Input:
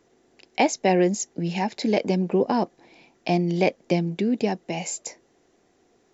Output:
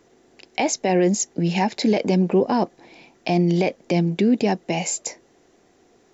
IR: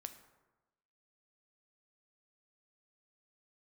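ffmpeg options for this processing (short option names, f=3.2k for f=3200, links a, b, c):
-af "alimiter=limit=-16dB:level=0:latency=1:release=20,volume=5.5dB"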